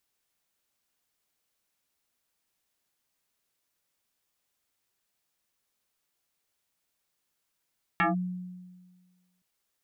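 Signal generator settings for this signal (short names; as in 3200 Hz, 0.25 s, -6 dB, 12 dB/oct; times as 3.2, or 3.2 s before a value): FM tone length 1.42 s, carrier 181 Hz, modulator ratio 2.8, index 4.5, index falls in 0.15 s linear, decay 1.54 s, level -20 dB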